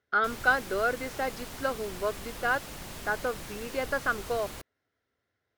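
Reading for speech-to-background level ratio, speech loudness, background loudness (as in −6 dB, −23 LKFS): 10.5 dB, −31.0 LKFS, −41.5 LKFS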